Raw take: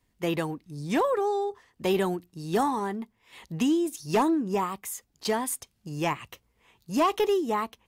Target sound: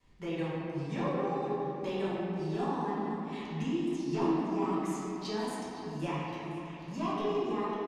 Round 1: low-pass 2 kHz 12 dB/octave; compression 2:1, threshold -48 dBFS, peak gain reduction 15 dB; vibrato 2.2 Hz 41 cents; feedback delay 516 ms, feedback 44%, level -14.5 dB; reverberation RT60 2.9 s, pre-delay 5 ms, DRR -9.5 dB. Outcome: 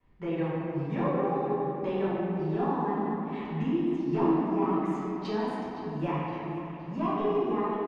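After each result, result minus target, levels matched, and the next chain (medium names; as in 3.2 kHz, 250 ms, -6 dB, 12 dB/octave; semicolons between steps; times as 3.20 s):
8 kHz band -18.0 dB; compression: peak gain reduction -4.5 dB
low-pass 6.8 kHz 12 dB/octave; compression 2:1, threshold -48 dBFS, peak gain reduction 15 dB; vibrato 2.2 Hz 41 cents; feedback delay 516 ms, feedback 44%, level -14.5 dB; reverberation RT60 2.9 s, pre-delay 5 ms, DRR -9.5 dB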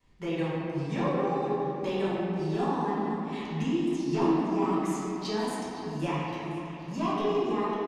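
compression: peak gain reduction -4 dB
low-pass 6.8 kHz 12 dB/octave; compression 2:1, threshold -56.5 dBFS, peak gain reduction 19 dB; vibrato 2.2 Hz 41 cents; feedback delay 516 ms, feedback 44%, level -14.5 dB; reverberation RT60 2.9 s, pre-delay 5 ms, DRR -9.5 dB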